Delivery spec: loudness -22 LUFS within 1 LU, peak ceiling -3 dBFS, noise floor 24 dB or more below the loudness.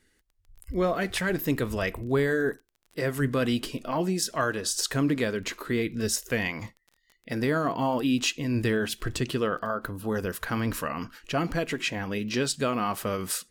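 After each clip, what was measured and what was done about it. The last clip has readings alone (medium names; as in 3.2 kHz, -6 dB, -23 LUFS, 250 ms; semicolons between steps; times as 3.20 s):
tick rate 22 per s; loudness -28.5 LUFS; peak level -12.5 dBFS; loudness target -22.0 LUFS
-> de-click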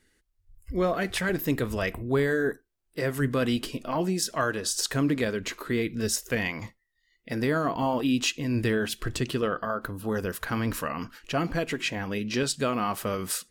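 tick rate 0.15 per s; loudness -28.5 LUFS; peak level -12.5 dBFS; loudness target -22.0 LUFS
-> trim +6.5 dB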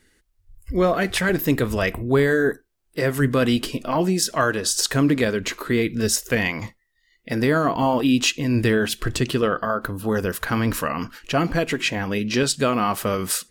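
loudness -22.0 LUFS; peak level -6.0 dBFS; noise floor -67 dBFS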